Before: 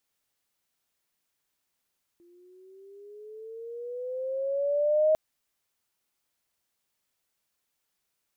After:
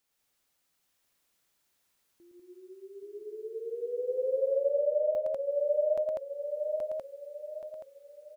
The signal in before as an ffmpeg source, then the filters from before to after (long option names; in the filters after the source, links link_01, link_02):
-f lavfi -i "aevalsrc='pow(10,(-18+37*(t/2.95-1))/20)*sin(2*PI*343*2.95/(10.5*log(2)/12)*(exp(10.5*log(2)/12*t/2.95)-1))':duration=2.95:sample_rate=44100"
-filter_complex "[0:a]asplit=2[link_01][link_02];[link_02]aecho=0:1:826|1652|2478|3304|4130:0.668|0.254|0.0965|0.0367|0.0139[link_03];[link_01][link_03]amix=inputs=2:normalize=0,alimiter=level_in=2.5dB:limit=-24dB:level=0:latency=1:release=482,volume=-2.5dB,asplit=2[link_04][link_05];[link_05]aecho=0:1:113.7|195.3:0.631|0.891[link_06];[link_04][link_06]amix=inputs=2:normalize=0"